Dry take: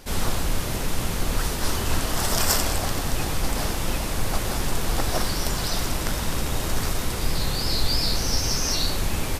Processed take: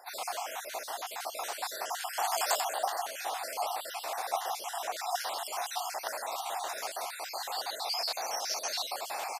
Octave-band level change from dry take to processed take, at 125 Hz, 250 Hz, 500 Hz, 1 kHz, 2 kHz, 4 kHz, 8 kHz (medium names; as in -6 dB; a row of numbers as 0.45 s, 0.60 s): under -40 dB, under -30 dB, -6.5 dB, -1.0 dB, -8.0 dB, -9.0 dB, -9.5 dB